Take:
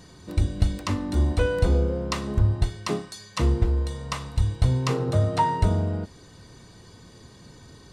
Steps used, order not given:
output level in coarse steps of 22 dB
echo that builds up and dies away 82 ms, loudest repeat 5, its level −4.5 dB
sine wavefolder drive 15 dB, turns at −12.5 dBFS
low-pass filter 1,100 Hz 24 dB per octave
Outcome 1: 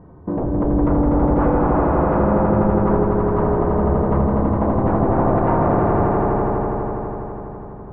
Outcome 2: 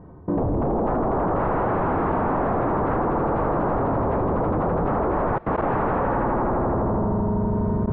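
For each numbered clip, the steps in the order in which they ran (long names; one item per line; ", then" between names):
sine wavefolder, then low-pass filter, then output level in coarse steps, then echo that builds up and dies away
echo that builds up and dies away, then sine wavefolder, then low-pass filter, then output level in coarse steps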